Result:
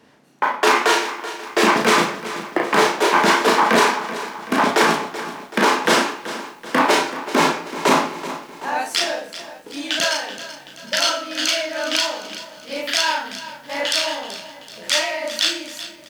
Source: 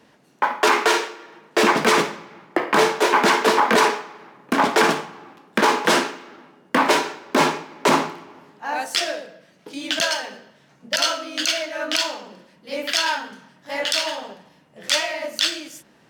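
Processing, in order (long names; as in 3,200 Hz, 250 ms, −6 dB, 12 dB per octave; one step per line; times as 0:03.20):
double-tracking delay 35 ms −3 dB
feedback echo at a low word length 381 ms, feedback 55%, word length 7 bits, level −13.5 dB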